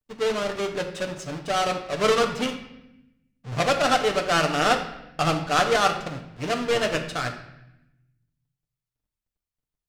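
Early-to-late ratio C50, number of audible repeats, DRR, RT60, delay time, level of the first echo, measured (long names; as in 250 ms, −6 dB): 8.5 dB, no echo audible, 3.0 dB, 0.85 s, no echo audible, no echo audible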